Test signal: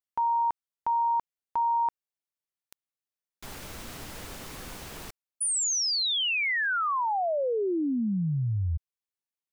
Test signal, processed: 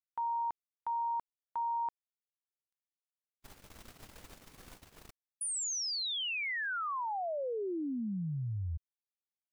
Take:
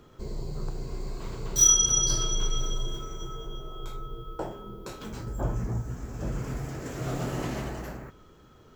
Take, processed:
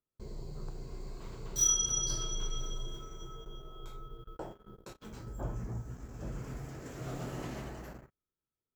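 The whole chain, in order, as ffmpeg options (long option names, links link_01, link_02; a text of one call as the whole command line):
ffmpeg -i in.wav -af "agate=range=-34dB:threshold=-43dB:ratio=16:release=41:detection=peak,volume=-8.5dB" out.wav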